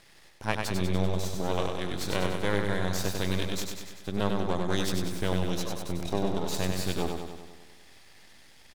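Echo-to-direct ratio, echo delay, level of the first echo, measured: -2.5 dB, 97 ms, -4.5 dB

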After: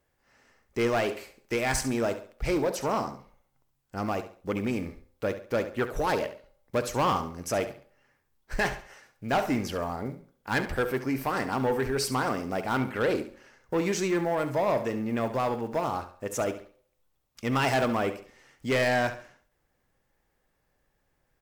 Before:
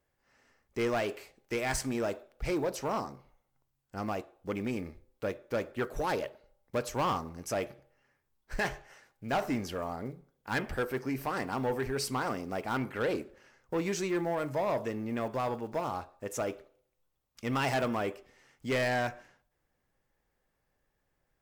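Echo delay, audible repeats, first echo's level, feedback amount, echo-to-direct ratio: 69 ms, 3, -12.0 dB, 31%, -11.5 dB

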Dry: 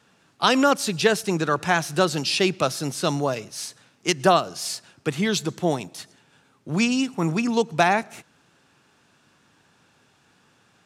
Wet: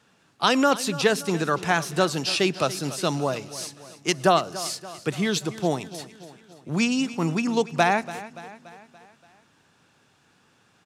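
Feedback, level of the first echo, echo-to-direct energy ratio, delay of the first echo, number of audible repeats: 54%, -16.0 dB, -14.5 dB, 0.287 s, 4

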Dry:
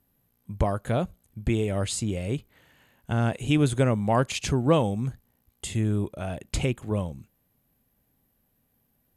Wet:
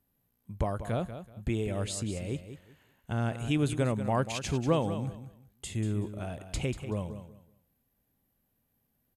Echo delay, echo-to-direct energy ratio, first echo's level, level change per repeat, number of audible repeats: 0.189 s, -11.0 dB, -11.0 dB, -13.0 dB, 2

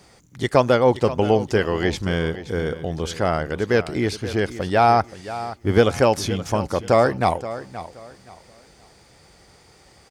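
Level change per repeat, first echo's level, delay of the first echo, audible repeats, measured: -11.5 dB, -14.0 dB, 0.525 s, 2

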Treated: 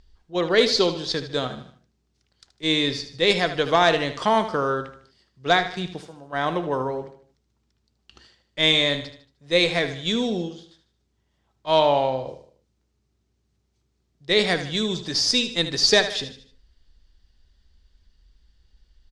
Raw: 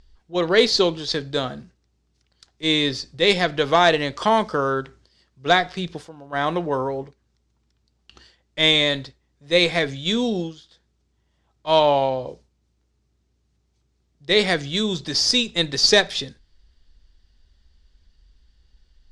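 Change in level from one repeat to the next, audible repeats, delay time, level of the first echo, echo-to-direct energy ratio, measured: -7.5 dB, 4, 76 ms, -11.5 dB, -10.5 dB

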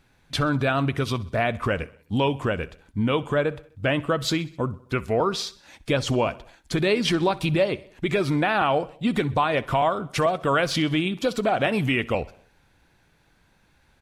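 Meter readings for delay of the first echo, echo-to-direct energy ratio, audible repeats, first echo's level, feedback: 64 ms, -20.0 dB, 3, -21.5 dB, 58%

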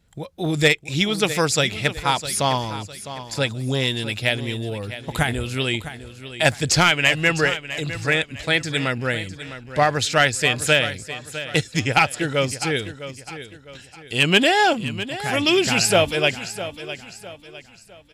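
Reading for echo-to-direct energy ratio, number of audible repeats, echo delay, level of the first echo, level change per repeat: -12.5 dB, 3, 0.656 s, -13.0 dB, -8.5 dB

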